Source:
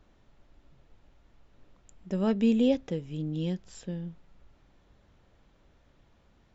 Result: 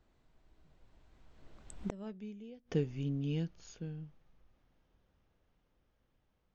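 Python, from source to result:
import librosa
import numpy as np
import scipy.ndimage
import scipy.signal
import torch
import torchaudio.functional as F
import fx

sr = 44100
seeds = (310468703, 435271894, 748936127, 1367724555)

y = fx.doppler_pass(x, sr, speed_mps=35, closest_m=5.9, pass_at_s=2.04)
y = fx.gate_flip(y, sr, shuts_db=-34.0, range_db=-31)
y = F.gain(torch.from_numpy(y), 13.0).numpy()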